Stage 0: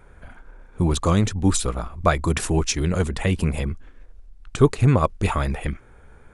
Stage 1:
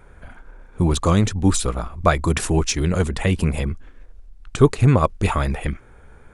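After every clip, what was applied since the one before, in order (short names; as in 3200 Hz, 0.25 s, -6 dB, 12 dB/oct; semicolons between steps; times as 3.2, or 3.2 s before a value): de-esser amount 35%; gain +2 dB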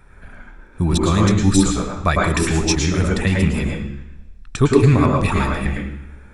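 reverb RT60 0.65 s, pre-delay 0.101 s, DRR -1 dB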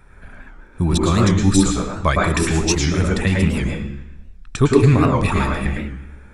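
record warp 78 rpm, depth 160 cents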